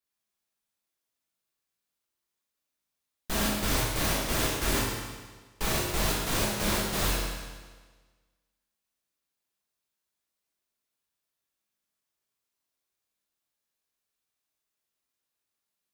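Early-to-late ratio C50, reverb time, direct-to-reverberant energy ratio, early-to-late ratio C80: 0.0 dB, 1.4 s, -5.5 dB, 2.0 dB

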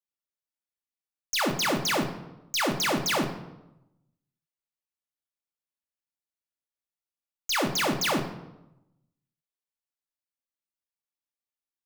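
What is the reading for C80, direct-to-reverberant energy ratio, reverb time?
12.5 dB, 3.5 dB, 0.95 s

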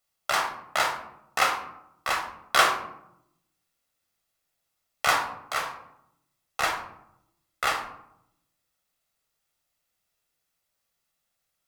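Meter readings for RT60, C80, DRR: 0.80 s, 10.0 dB, 3.0 dB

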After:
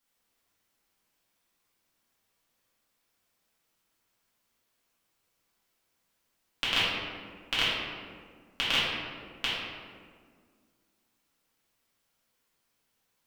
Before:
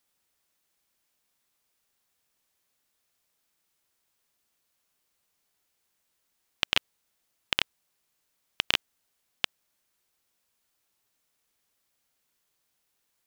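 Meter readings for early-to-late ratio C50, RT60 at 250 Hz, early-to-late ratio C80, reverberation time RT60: -2.0 dB, 2.5 s, 0.5 dB, 1.9 s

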